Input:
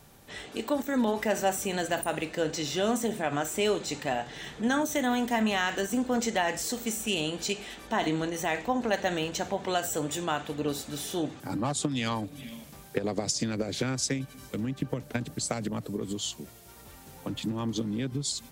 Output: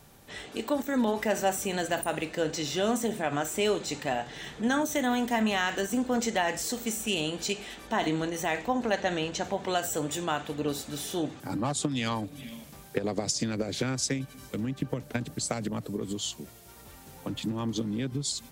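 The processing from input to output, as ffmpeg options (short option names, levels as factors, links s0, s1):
-filter_complex "[0:a]asettb=1/sr,asplit=3[s0][s1][s2];[s0]atrim=end=8.934[s3];[s1]atrim=start=8.93:end=9.44,asetpts=PTS-STARTPTS,afade=t=in:d=0.004:c=qsin,afade=t=out:st=0.506:d=0.004:c=qsin,lowpass=7700[s4];[s2]atrim=start=9.436[s5];[s3][s4]acrossfade=d=0.004:c1=hsin:c2=qsin[s6];[s6][s5]acrossfade=d=0.004:c1=qsin:c2=hsin"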